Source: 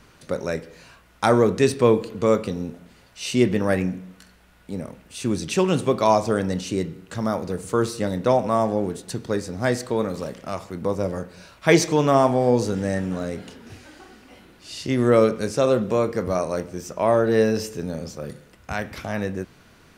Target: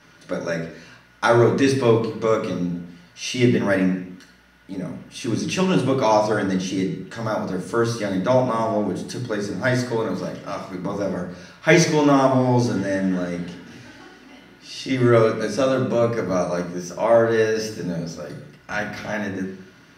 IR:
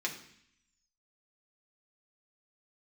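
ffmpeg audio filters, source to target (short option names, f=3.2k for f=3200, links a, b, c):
-filter_complex "[1:a]atrim=start_sample=2205,afade=t=out:st=0.29:d=0.01,atrim=end_sample=13230,asetrate=36162,aresample=44100[a];[0:a][a]afir=irnorm=-1:irlink=0,volume=-2.5dB"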